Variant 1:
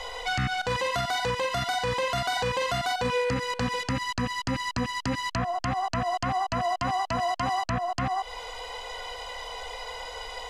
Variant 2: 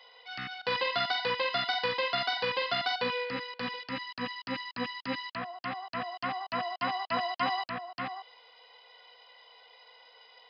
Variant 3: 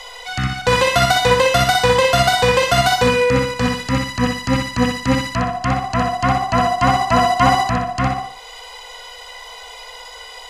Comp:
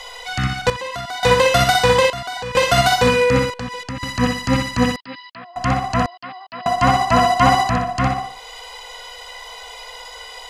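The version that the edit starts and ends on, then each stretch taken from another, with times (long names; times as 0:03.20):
3
0:00.70–0:01.23: punch in from 1
0:02.10–0:02.55: punch in from 1
0:03.50–0:04.03: punch in from 1
0:04.96–0:05.56: punch in from 2
0:06.06–0:06.66: punch in from 2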